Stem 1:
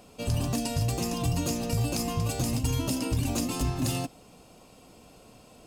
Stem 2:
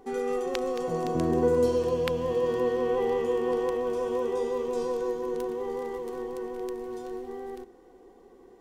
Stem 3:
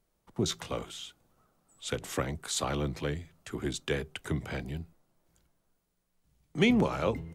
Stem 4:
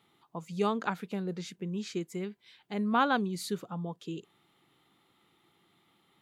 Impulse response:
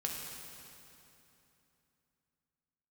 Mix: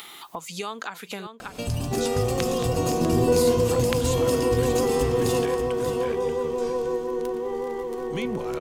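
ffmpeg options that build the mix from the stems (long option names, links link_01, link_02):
-filter_complex "[0:a]adelay=1400,volume=0dB,asplit=2[link_01][link_02];[link_02]volume=-8dB[link_03];[1:a]adelay=1850,volume=3dB[link_04];[2:a]adelay=1550,volume=-4dB,asplit=2[link_05][link_06];[link_06]volume=-6.5dB[link_07];[3:a]highpass=frequency=1300:poles=1,acontrast=86,volume=0dB,asplit=3[link_08][link_09][link_10];[link_08]atrim=end=1.27,asetpts=PTS-STARTPTS,afade=type=out:start_time=1.266:duration=0.004:curve=hsin[link_11];[link_09]atrim=start=1.27:end=3.37,asetpts=PTS-STARTPTS,volume=0[link_12];[link_10]atrim=start=3.37,asetpts=PTS-STARTPTS,afade=type=in:duration=0.004:curve=hsin[link_13];[link_11][link_12][link_13]concat=n=3:v=0:a=1,asplit=2[link_14][link_15];[link_15]volume=-17.5dB[link_16];[link_05][link_14]amix=inputs=2:normalize=0,highshelf=frequency=6200:gain=7.5,alimiter=limit=-22dB:level=0:latency=1:release=199,volume=0dB[link_17];[link_03][link_07][link_16]amix=inputs=3:normalize=0,aecho=0:1:584:1[link_18];[link_01][link_04][link_17][link_18]amix=inputs=4:normalize=0,acompressor=mode=upward:threshold=-26dB:ratio=2.5"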